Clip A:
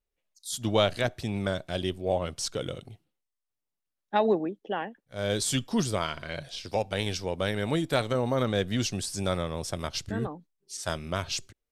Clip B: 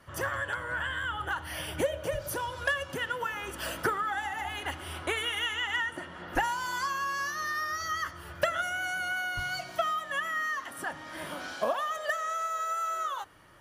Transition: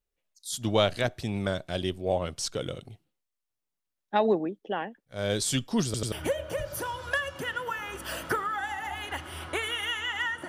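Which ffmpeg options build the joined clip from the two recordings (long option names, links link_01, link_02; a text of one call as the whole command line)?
ffmpeg -i cue0.wav -i cue1.wav -filter_complex "[0:a]apad=whole_dur=10.48,atrim=end=10.48,asplit=3[link_01][link_02][link_03];[link_01]atrim=end=5.942[link_04];[link_02]atrim=start=5.848:end=5.942[link_05];[link_03]atrim=start=5.848:end=5.942[link_06];[1:a]atrim=start=1.658:end=6.02[link_07];[link_04][link_05]acrossfade=duration=0.004:curve1=hsin:curve2=hsin[link_08];[link_08][link_06]acrossfade=duration=0.004:curve1=hsin:curve2=hsin[link_09];[link_09][link_07]acrossfade=duration=0.004:curve1=hsin:curve2=hsin" out.wav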